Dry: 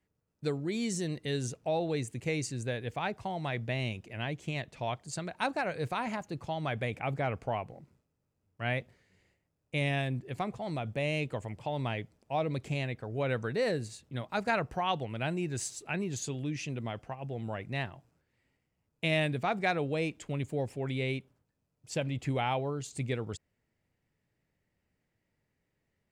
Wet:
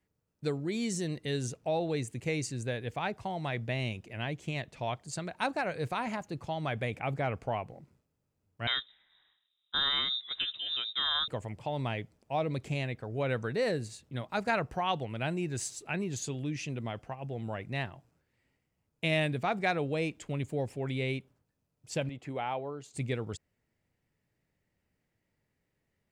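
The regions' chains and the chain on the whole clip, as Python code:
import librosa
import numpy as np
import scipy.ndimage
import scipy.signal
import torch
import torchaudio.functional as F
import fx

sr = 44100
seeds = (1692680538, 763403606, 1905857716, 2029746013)

y = fx.chain(x, sr, fx.doubler(ms=13.0, db=-14.0),
    fx.freq_invert(carrier_hz=3800), at=(8.67, 11.28))
y = fx.chain(y, sr, fx.highpass(hz=430.0, slope=6),
    fx.high_shelf(hz=2100.0, db=-11.0), at=(22.09, 22.94))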